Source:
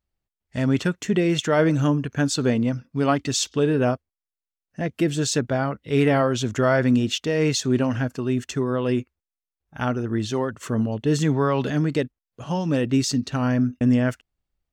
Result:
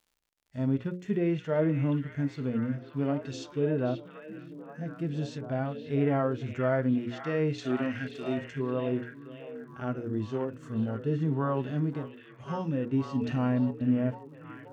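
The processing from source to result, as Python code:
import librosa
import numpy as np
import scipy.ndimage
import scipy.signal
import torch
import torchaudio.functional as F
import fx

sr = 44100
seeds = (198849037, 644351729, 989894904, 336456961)

p1 = fx.env_lowpass_down(x, sr, base_hz=2200.0, full_db=-16.5)
p2 = fx.hum_notches(p1, sr, base_hz=60, count=9)
p3 = fx.dmg_crackle(p2, sr, seeds[0], per_s=83.0, level_db=-44.0)
p4 = fx.graphic_eq(p3, sr, hz=(125, 1000, 2000, 4000, 8000), db=(-7, -6, 11, 9, 10), at=(7.58, 8.38))
p5 = fx.hpss(p4, sr, part='percussive', gain_db=-17)
p6 = p5 + fx.echo_stepped(p5, sr, ms=533, hz=2500.0, octaves=-0.7, feedback_pct=70, wet_db=-3, dry=0)
p7 = fx.env_flatten(p6, sr, amount_pct=50, at=(13.15, 13.71))
y = F.gain(torch.from_numpy(p7), -6.0).numpy()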